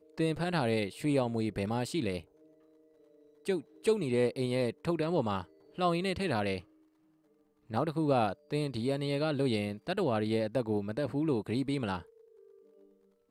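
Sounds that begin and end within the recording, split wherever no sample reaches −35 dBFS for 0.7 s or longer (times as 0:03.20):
0:03.47–0:06.58
0:07.71–0:11.99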